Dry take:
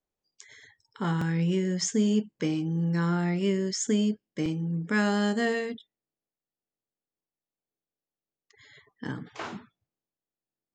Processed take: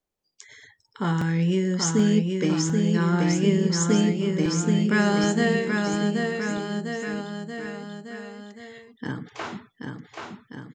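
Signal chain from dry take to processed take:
bouncing-ball delay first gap 780 ms, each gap 0.9×, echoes 5
level +3.5 dB

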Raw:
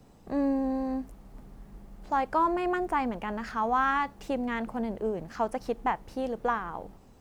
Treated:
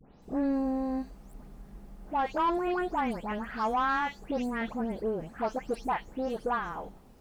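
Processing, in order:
every frequency bin delayed by itself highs late, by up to 223 ms
soft clipping −20 dBFS, distortion −19 dB

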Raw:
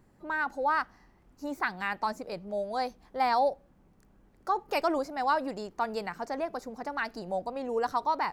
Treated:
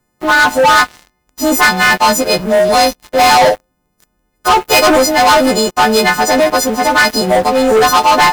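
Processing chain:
every partial snapped to a pitch grid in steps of 3 semitones
leveller curve on the samples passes 5
level +8 dB

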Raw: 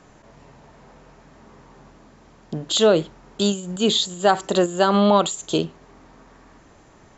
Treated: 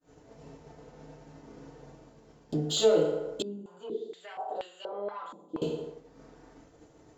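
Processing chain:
dynamic equaliser 1,000 Hz, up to +7 dB, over −33 dBFS, Q 1.2
leveller curve on the samples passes 1
feedback delay network reverb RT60 0.81 s, low-frequency decay 0.75×, high-frequency decay 0.65×, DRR −8.5 dB
downward compressor 2 to 1, threshold −36 dBFS, peak gain reduction 21.5 dB
downward expander −35 dBFS
graphic EQ with 10 bands 500 Hz +4 dB, 1,000 Hz −6 dB, 2,000 Hz −4 dB
0:03.42–0:05.62: band-pass on a step sequencer 4.2 Hz 250–3,000 Hz
level −3.5 dB

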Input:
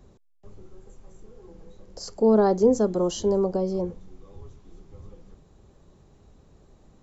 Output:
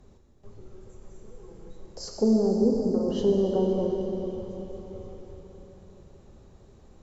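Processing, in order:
treble cut that deepens with the level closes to 320 Hz, closed at −17 dBFS
0:02.70–0:03.22: compressor whose output falls as the input rises −28 dBFS
convolution reverb RT60 4.3 s, pre-delay 4 ms, DRR 0 dB
level −1.5 dB

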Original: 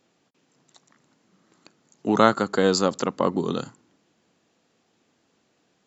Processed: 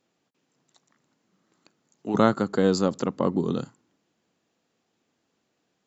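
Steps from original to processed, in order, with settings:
0:02.14–0:03.65: low-shelf EQ 450 Hz +10.5 dB
level −7 dB

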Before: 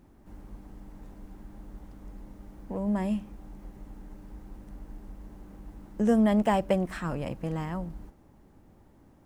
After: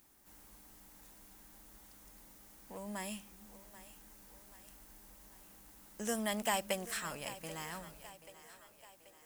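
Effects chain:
first-order pre-emphasis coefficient 0.97
echo with a time of its own for lows and highs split 330 Hz, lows 318 ms, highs 784 ms, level −15 dB
level +10 dB

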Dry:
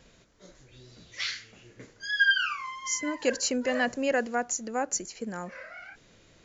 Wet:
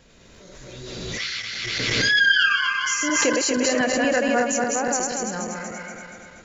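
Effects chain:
feedback delay that plays each chunk backwards 119 ms, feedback 74%, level −2 dB
background raised ahead of every attack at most 23 dB per second
level +2.5 dB

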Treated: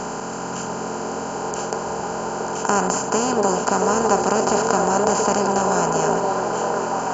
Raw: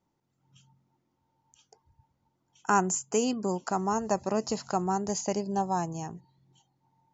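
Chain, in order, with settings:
compressor on every frequency bin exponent 0.2
low-shelf EQ 82 Hz +9.5 dB
echo through a band-pass that steps 678 ms, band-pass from 470 Hz, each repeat 0.7 octaves, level 0 dB

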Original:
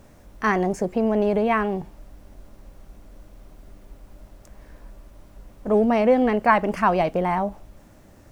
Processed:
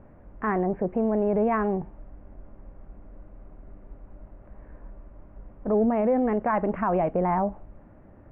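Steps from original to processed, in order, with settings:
Bessel low-pass filter 1,300 Hz, order 8
brickwall limiter −16 dBFS, peak gain reduction 8.5 dB

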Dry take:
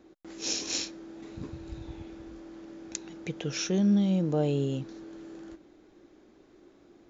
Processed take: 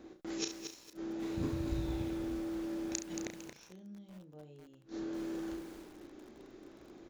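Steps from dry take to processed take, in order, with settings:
gate with flip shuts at −26 dBFS, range −31 dB
on a send: ambience of single reflections 33 ms −6.5 dB, 69 ms −11 dB
on the sum: feedback echo at a low word length 227 ms, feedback 35%, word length 9 bits, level −7 dB
level +2.5 dB

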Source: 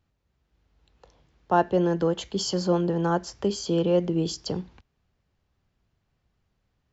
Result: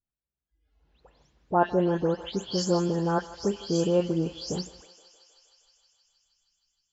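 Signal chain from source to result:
every frequency bin delayed by itself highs late, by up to 227 ms
noise reduction from a noise print of the clip's start 20 dB
on a send: feedback echo with a high-pass in the loop 157 ms, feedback 82%, high-pass 480 Hz, level −17 dB
on the sum: level −1.5 dB

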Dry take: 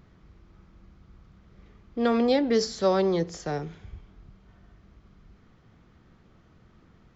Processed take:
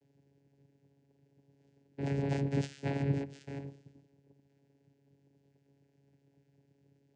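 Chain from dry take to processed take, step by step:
low-shelf EQ 330 Hz −8.5 dB
cochlear-implant simulation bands 3
Chebyshev band-stop filter 610–2,000 Hz, order 5
channel vocoder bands 8, saw 139 Hz
level −2 dB

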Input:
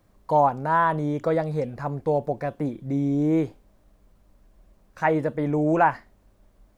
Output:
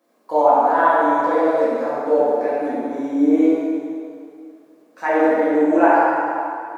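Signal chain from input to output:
Chebyshev high-pass filter 240 Hz, order 4
feedback echo with a band-pass in the loop 70 ms, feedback 71%, band-pass 950 Hz, level −5 dB
dense smooth reverb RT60 2.4 s, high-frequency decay 0.85×, DRR −9 dB
level −3.5 dB

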